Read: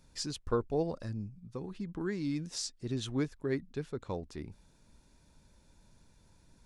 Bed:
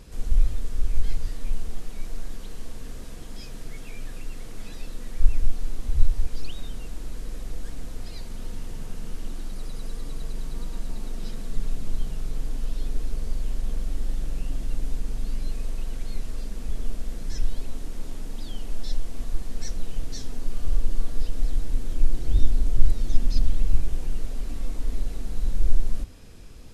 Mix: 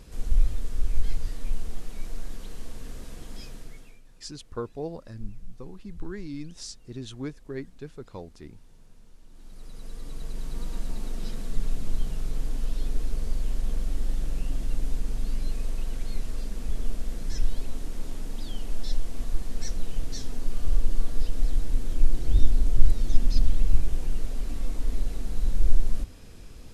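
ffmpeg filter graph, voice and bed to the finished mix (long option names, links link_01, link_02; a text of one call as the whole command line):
ffmpeg -i stem1.wav -i stem2.wav -filter_complex "[0:a]adelay=4050,volume=-2.5dB[link_01];[1:a]volume=18.5dB,afade=type=out:start_time=3.4:duration=0.62:silence=0.11885,afade=type=in:start_time=9.28:duration=1.44:silence=0.1[link_02];[link_01][link_02]amix=inputs=2:normalize=0" out.wav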